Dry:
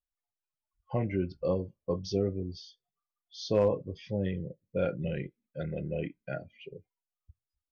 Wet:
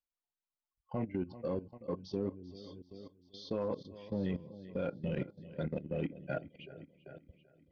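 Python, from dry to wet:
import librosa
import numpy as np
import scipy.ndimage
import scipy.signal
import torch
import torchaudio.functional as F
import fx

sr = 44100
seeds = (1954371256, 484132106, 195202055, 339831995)

p1 = fx.rider(x, sr, range_db=5, speed_s=0.5)
p2 = p1 + fx.echo_feedback(p1, sr, ms=389, feedback_pct=57, wet_db=-13.0, dry=0)
p3 = fx.level_steps(p2, sr, step_db=16)
p4 = fx.graphic_eq_10(p3, sr, hz=(250, 1000, 4000), db=(9, 7, 9))
p5 = np.clip(p4, -10.0 ** (-27.0 / 20.0), 10.0 ** (-27.0 / 20.0))
p6 = p4 + F.gain(torch.from_numpy(p5), -7.5).numpy()
p7 = fx.high_shelf(p6, sr, hz=5000.0, db=-11.0)
y = F.gain(torch.from_numpy(p7), -8.5).numpy()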